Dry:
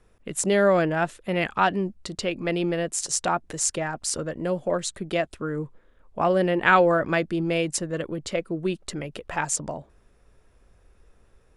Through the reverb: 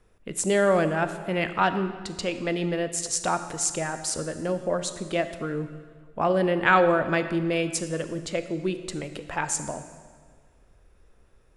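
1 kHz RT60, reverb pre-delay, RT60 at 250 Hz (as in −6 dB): 1.6 s, 25 ms, 1.8 s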